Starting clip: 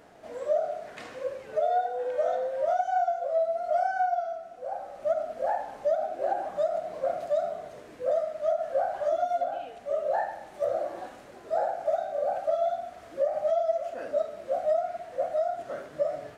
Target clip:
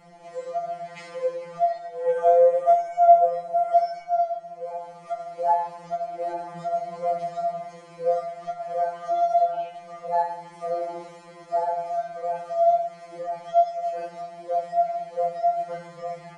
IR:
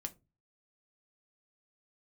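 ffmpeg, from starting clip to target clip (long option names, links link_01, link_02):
-filter_complex "[0:a]asettb=1/sr,asplit=3[link_01][link_02][link_03];[link_01]atrim=end=2.044[link_04];[link_02]atrim=start=2.04:end=3.74,asetpts=PTS-STARTPTS,afade=type=in:duration=0.004:curve=qsin,afade=type=out:start_time=1.696:duration=0.004:curve=qsin,aecho=1:1:5.7:0.66,atrim=end_sample=74970[link_05];[link_03]atrim=start=3.736[link_06];[link_04][link_05]acrossfade=duration=0.004:curve1=hsin:curve2=qsin[link_07];[link_07][link_06]acrossfade=duration=0.004:curve1=qsin:curve2=hsin[link_08];[1:a]atrim=start_sample=2205,atrim=end_sample=3528[link_09];[link_08][link_09]afir=irnorm=-1:irlink=0,aresample=22050,aresample=44100,afftfilt=real='re*2.83*eq(mod(b,8),0)':imag='im*2.83*eq(mod(b,8),0)':win_size=2048:overlap=0.75,volume=7.5dB"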